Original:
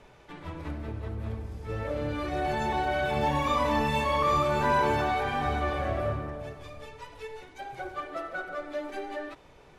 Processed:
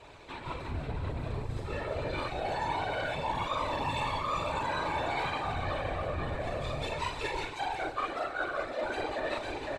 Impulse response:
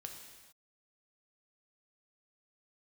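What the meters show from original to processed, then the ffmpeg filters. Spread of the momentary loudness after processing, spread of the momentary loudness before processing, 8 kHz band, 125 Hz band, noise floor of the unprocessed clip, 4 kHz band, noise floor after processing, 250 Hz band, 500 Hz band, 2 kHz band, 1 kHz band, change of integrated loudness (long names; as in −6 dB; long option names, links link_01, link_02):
5 LU, 18 LU, −2.0 dB, −3.5 dB, −54 dBFS, 0.0 dB, −42 dBFS, −6.5 dB, −4.0 dB, −2.0 dB, −4.0 dB, −4.5 dB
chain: -filter_complex "[0:a]highshelf=frequency=8400:gain=-9.5,asplit=2[link_01][link_02];[link_02]adelay=42,volume=-4dB[link_03];[link_01][link_03]amix=inputs=2:normalize=0,aecho=1:1:508:0.282,afftfilt=real='hypot(re,im)*cos(2*PI*random(0))':imag='hypot(re,im)*sin(2*PI*random(1))':win_size=512:overlap=0.75,areverse,acompressor=threshold=-45dB:ratio=12,areverse,equalizer=frequency=200:width_type=o:width=0.33:gain=-10,equalizer=frequency=1000:width_type=o:width=0.33:gain=4,equalizer=frequency=2500:width_type=o:width=0.33:gain=5,equalizer=frequency=4000:width_type=o:width=0.33:gain=10,equalizer=frequency=8000:width_type=o:width=0.33:gain=11,dynaudnorm=framelen=210:gausssize=5:maxgain=8dB,volume=6.5dB"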